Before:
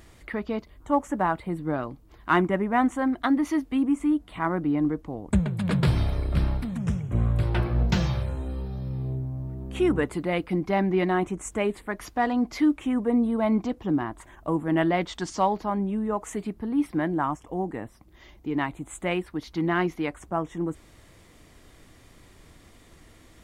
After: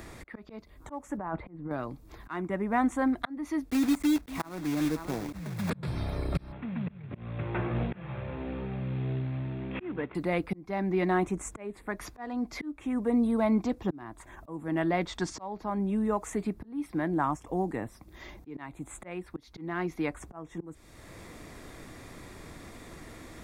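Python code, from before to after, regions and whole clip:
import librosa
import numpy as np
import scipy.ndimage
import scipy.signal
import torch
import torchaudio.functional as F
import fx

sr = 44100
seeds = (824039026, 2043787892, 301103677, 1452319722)

y = fx.chain(x, sr, fx.lowpass(hz=1500.0, slope=12),
    fx.over_compress(threshold_db=-30.0, ratio=-1.0), at=(1.17, 1.71))
y = fx.chain(y, sr, fx.block_float(bits=3),
    fx.echo_single(ms=557, db=-17.0), at=(3.7, 5.7))
y = fx.chain(y, sr, fx.cvsd(bps=16000),
    fx.highpass(hz=110.0, slope=12), at=(6.52, 10.15))
y = fx.notch(y, sr, hz=3000.0, q=7.9)
y = fx.auto_swell(y, sr, attack_ms=628.0)
y = fx.band_squash(y, sr, depth_pct=40)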